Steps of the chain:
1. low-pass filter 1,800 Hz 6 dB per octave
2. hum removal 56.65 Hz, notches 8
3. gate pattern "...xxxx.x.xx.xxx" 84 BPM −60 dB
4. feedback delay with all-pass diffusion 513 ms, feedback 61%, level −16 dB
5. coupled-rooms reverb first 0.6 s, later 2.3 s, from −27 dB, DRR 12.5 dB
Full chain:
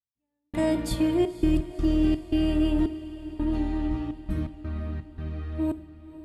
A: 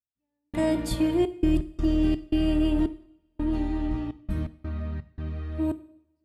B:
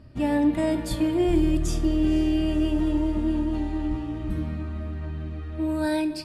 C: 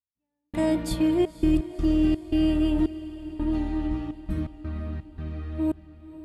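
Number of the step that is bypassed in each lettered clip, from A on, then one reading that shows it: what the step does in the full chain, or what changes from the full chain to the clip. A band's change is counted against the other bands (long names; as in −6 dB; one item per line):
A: 4, echo-to-direct ratio −10.0 dB to −12.5 dB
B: 3, 1 kHz band +2.5 dB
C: 5, echo-to-direct ratio −10.0 dB to −14.0 dB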